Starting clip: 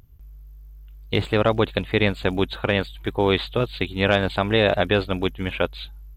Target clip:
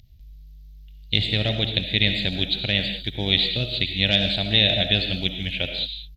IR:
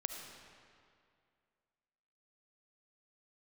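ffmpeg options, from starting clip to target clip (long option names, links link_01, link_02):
-filter_complex "[0:a]firequalizer=gain_entry='entry(150,0);entry(440,-14);entry(640,-6);entry(1100,-26);entry(1900,-2);entry(3900,12);entry(8300,-5)':delay=0.05:min_phase=1[link_01];[1:a]atrim=start_sample=2205,afade=type=out:start_time=0.26:duration=0.01,atrim=end_sample=11907[link_02];[link_01][link_02]afir=irnorm=-1:irlink=0,volume=1dB"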